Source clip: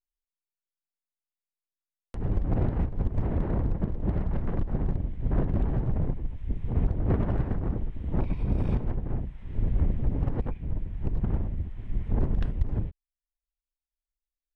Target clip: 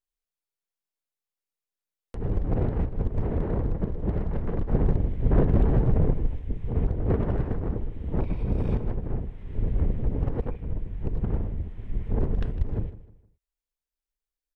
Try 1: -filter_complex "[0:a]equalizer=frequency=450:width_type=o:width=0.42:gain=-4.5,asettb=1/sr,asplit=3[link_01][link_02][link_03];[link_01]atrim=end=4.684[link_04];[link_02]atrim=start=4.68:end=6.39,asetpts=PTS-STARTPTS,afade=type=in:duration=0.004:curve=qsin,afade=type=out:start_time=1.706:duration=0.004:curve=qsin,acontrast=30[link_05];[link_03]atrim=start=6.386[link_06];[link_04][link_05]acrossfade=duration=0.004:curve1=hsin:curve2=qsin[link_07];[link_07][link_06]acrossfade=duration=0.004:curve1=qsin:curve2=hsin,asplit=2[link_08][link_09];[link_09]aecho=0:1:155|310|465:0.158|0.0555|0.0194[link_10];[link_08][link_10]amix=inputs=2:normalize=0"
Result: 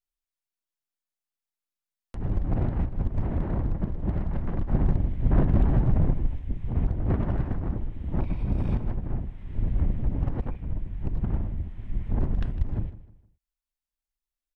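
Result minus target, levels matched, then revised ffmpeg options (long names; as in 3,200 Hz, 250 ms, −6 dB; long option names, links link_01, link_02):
500 Hz band −5.5 dB
-filter_complex "[0:a]equalizer=frequency=450:width_type=o:width=0.42:gain=6.5,asettb=1/sr,asplit=3[link_01][link_02][link_03];[link_01]atrim=end=4.684[link_04];[link_02]atrim=start=4.68:end=6.39,asetpts=PTS-STARTPTS,afade=type=in:duration=0.004:curve=qsin,afade=type=out:start_time=1.706:duration=0.004:curve=qsin,acontrast=30[link_05];[link_03]atrim=start=6.386[link_06];[link_04][link_05]acrossfade=duration=0.004:curve1=hsin:curve2=qsin[link_07];[link_07][link_06]acrossfade=duration=0.004:curve1=qsin:curve2=hsin,asplit=2[link_08][link_09];[link_09]aecho=0:1:155|310|465:0.158|0.0555|0.0194[link_10];[link_08][link_10]amix=inputs=2:normalize=0"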